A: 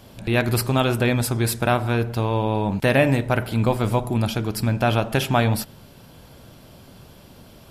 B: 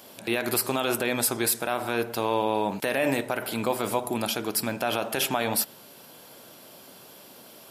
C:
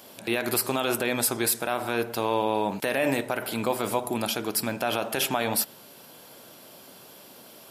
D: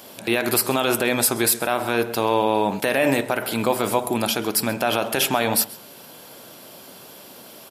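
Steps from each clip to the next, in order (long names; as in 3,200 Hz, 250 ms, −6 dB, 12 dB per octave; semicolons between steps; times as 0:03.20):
high-pass filter 320 Hz 12 dB per octave; high-shelf EQ 8,300 Hz +10.5 dB; brickwall limiter −13 dBFS, peak gain reduction 9.5 dB
no processing that can be heard
single-tap delay 132 ms −20.5 dB; level +5.5 dB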